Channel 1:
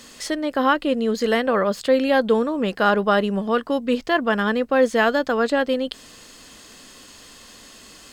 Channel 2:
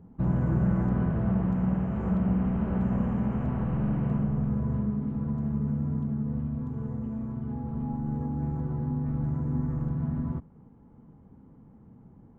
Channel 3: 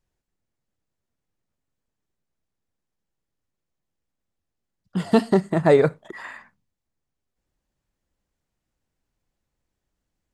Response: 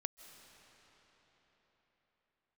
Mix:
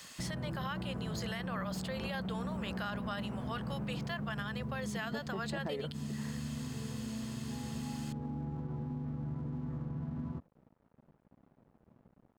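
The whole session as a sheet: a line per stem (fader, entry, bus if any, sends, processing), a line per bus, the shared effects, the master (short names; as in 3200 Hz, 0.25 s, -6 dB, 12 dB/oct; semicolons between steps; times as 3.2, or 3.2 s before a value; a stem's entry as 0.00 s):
-16.0 dB, 0.00 s, no bus, no send, HPF 560 Hz 24 dB/oct; tilt +3.5 dB/oct; three-band squash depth 40%
-3.0 dB, 0.00 s, bus A, no send, low shelf 64 Hz -11.5 dB; limiter -24.5 dBFS, peak gain reduction 7.5 dB
-12.0 dB, 0.00 s, bus A, no send, LPF 3900 Hz
bus A: 0.0 dB, crossover distortion -57 dBFS; compressor 3:1, threshold -36 dBFS, peak gain reduction 11 dB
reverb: off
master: high shelf 5500 Hz -4.5 dB; limiter -28.5 dBFS, peak gain reduction 7.5 dB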